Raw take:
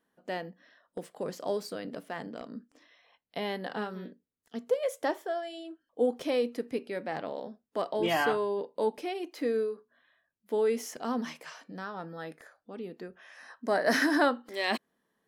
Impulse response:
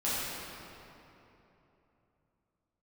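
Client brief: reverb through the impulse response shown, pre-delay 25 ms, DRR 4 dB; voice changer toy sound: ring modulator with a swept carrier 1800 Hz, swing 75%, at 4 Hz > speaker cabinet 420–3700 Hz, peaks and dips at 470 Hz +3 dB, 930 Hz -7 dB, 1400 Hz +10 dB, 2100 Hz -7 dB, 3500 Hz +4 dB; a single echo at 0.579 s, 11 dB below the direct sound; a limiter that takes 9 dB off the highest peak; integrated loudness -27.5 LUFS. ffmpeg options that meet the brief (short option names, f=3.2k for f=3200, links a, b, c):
-filter_complex "[0:a]alimiter=limit=-22dB:level=0:latency=1,aecho=1:1:579:0.282,asplit=2[a][b];[1:a]atrim=start_sample=2205,adelay=25[c];[b][c]afir=irnorm=-1:irlink=0,volume=-13dB[d];[a][d]amix=inputs=2:normalize=0,aeval=exprs='val(0)*sin(2*PI*1800*n/s+1800*0.75/4*sin(2*PI*4*n/s))':c=same,highpass=420,equalizer=f=470:t=q:w=4:g=3,equalizer=f=930:t=q:w=4:g=-7,equalizer=f=1.4k:t=q:w=4:g=10,equalizer=f=2.1k:t=q:w=4:g=-7,equalizer=f=3.5k:t=q:w=4:g=4,lowpass=f=3.7k:w=0.5412,lowpass=f=3.7k:w=1.3066,volume=6dB"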